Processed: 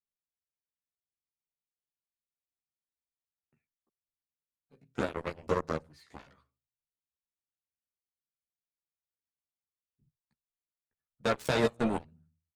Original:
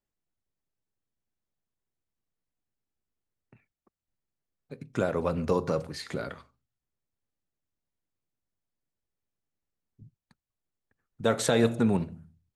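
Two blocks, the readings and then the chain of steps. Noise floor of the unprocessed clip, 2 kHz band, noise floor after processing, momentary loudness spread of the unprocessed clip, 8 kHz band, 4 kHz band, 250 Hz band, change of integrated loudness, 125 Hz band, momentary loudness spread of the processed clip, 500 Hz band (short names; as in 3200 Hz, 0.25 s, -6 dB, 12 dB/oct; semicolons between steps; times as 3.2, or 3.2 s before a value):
under -85 dBFS, -1.0 dB, under -85 dBFS, 13 LU, -12.0 dB, -4.0 dB, -6.5 dB, -4.0 dB, -8.0 dB, 10 LU, -5.0 dB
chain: added harmonics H 3 -33 dB, 7 -16 dB, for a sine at -10.5 dBFS; chorus voices 2, 0.53 Hz, delay 14 ms, depth 1.2 ms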